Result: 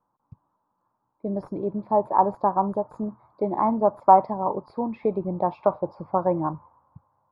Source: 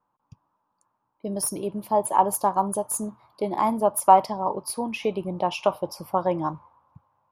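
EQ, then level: boxcar filter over 15 samples; distance through air 240 m; +2.5 dB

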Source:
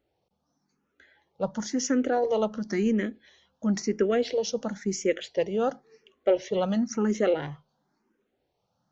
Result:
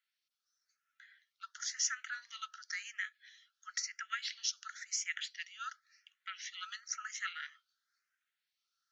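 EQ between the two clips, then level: rippled Chebyshev high-pass 1.3 kHz, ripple 3 dB; 0.0 dB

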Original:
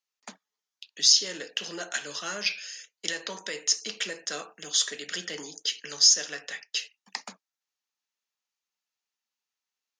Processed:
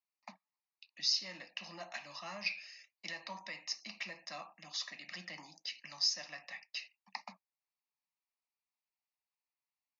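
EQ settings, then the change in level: distance through air 210 m; cabinet simulation 110–6300 Hz, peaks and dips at 130 Hz -8 dB, 270 Hz -8 dB, 390 Hz -6 dB, 1.8 kHz -4 dB; static phaser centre 2.2 kHz, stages 8; -1.5 dB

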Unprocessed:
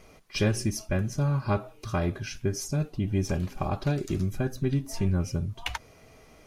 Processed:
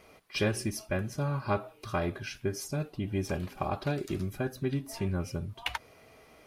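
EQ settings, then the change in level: high-pass 130 Hz 6 dB/octave; peaking EQ 170 Hz -4 dB 1.9 oct; peaking EQ 6.4 kHz -7 dB 0.62 oct; 0.0 dB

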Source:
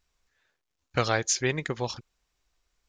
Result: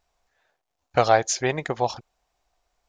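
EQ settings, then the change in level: peaking EQ 720 Hz +14.5 dB 0.89 oct; 0.0 dB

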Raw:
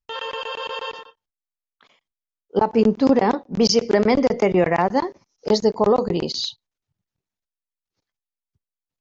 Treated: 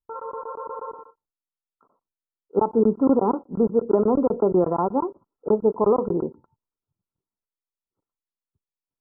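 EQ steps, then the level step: rippled Chebyshev low-pass 1.4 kHz, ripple 6 dB; 0.0 dB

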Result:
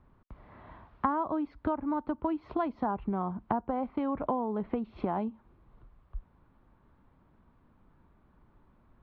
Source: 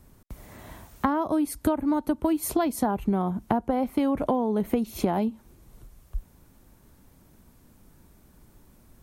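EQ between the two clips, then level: inverse Chebyshev low-pass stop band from 10 kHz, stop band 50 dB; distance through air 340 m; peaking EQ 1.1 kHz +8.5 dB 1 oct; -7.5 dB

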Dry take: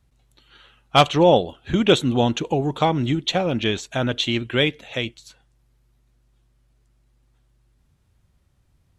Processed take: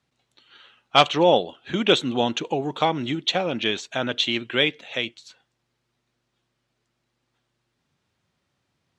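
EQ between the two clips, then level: band-pass 160–5200 Hz; tilt EQ +1.5 dB/octave; -1.0 dB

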